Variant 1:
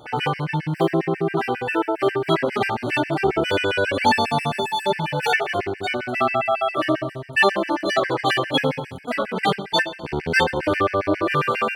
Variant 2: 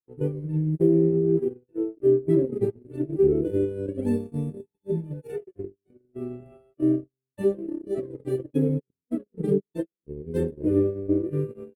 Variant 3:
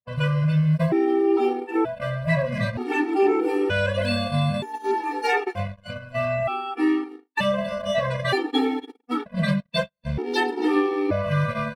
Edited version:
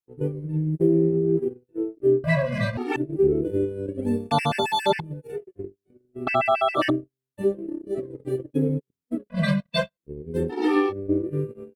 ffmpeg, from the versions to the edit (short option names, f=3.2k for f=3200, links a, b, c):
-filter_complex "[2:a]asplit=3[a][b][c];[0:a]asplit=2[d][e];[1:a]asplit=6[f][g][h][i][j][k];[f]atrim=end=2.242[l];[a]atrim=start=2.238:end=2.962[m];[g]atrim=start=2.958:end=4.312[n];[d]atrim=start=4.308:end=5.002[o];[h]atrim=start=4.998:end=6.272[p];[e]atrim=start=6.268:end=6.902[q];[i]atrim=start=6.898:end=9.302[r];[b]atrim=start=9.298:end=9.972[s];[j]atrim=start=9.968:end=10.53[t];[c]atrim=start=10.49:end=10.93[u];[k]atrim=start=10.89[v];[l][m]acrossfade=d=0.004:c1=hsin:c2=hsin[w];[w][n]acrossfade=d=0.004:c1=hsin:c2=hsin[x];[x][o]acrossfade=d=0.004:c1=hsin:c2=hsin[y];[y][p]acrossfade=d=0.004:c1=hsin:c2=hsin[z];[z][q]acrossfade=d=0.004:c1=hsin:c2=hsin[aa];[aa][r]acrossfade=d=0.004:c1=hsin:c2=hsin[ab];[ab][s]acrossfade=d=0.004:c1=hsin:c2=hsin[ac];[ac][t]acrossfade=d=0.004:c1=hsin:c2=hsin[ad];[ad][u]acrossfade=d=0.04:c1=tri:c2=tri[ae];[ae][v]acrossfade=d=0.04:c1=tri:c2=tri"